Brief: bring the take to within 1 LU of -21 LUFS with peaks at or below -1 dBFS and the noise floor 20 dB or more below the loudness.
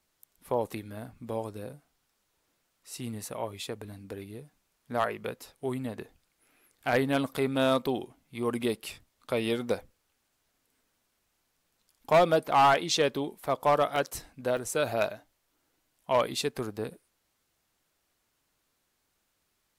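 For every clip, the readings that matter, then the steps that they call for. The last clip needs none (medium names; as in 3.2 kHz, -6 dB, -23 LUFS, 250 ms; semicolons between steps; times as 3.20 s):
clipped samples 0.3%; clipping level -16.0 dBFS; dropouts 2; longest dropout 1.7 ms; loudness -29.5 LUFS; peak level -16.0 dBFS; loudness target -21.0 LUFS
-> clip repair -16 dBFS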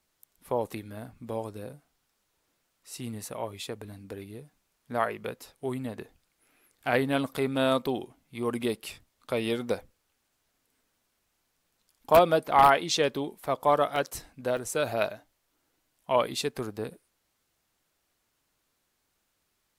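clipped samples 0.0%; dropouts 2; longest dropout 1.7 ms
-> interpolate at 13.96/14.57 s, 1.7 ms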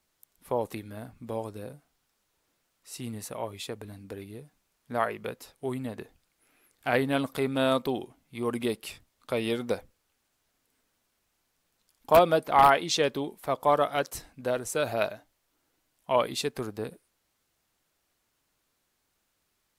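dropouts 0; loudness -28.5 LUFS; peak level -7.0 dBFS; loudness target -21.0 LUFS
-> trim +7.5 dB; peak limiter -1 dBFS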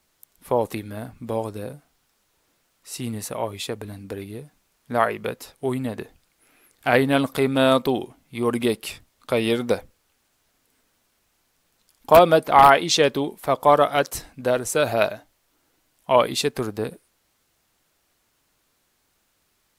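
loudness -21.5 LUFS; peak level -1.0 dBFS; noise floor -69 dBFS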